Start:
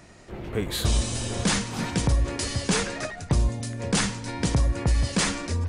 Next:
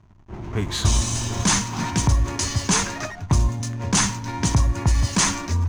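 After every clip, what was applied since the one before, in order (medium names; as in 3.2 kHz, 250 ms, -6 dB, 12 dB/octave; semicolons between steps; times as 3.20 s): level-controlled noise filter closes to 1.5 kHz, open at -22 dBFS; hysteresis with a dead band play -41 dBFS; graphic EQ with 31 bands 100 Hz +7 dB, 500 Hz -12 dB, 1 kHz +8 dB, 6.3 kHz +10 dB; trim +2.5 dB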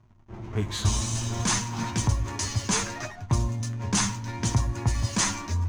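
flange 0.63 Hz, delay 8.2 ms, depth 1.5 ms, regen +42%; trim -1.5 dB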